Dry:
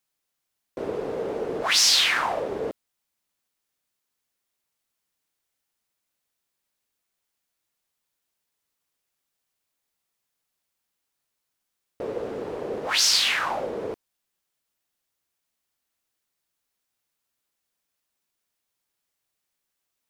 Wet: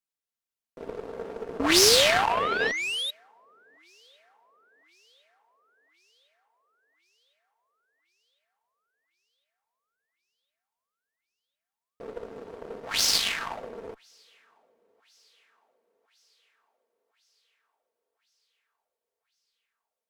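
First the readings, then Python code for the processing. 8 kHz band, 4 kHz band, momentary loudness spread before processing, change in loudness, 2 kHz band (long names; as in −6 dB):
−1.0 dB, −2.0 dB, 17 LU, 0.0 dB, −0.5 dB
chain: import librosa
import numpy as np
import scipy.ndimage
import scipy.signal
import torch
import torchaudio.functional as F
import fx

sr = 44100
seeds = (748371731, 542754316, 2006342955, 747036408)

p1 = np.where(x < 0.0, 10.0 ** (-3.0 / 20.0) * x, x)
p2 = p1 + 0.39 * np.pad(p1, (int(4.4 * sr / 1000.0), 0))[:len(p1)]
p3 = np.clip(p2, -10.0 ** (-23.0 / 20.0), 10.0 ** (-23.0 / 20.0))
p4 = p2 + (p3 * librosa.db_to_amplitude(-4.0))
p5 = fx.spec_paint(p4, sr, seeds[0], shape='rise', start_s=1.59, length_s=1.52, low_hz=260.0, high_hz=3900.0, level_db=-20.0)
p6 = p5 + fx.echo_thinned(p5, sr, ms=1056, feedback_pct=62, hz=290.0, wet_db=-23.5, dry=0)
p7 = fx.cheby_harmonics(p6, sr, harmonics=(3, 7), levels_db=(-15, -26), full_scale_db=-4.0)
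y = p7 * librosa.db_to_amplitude(2.0)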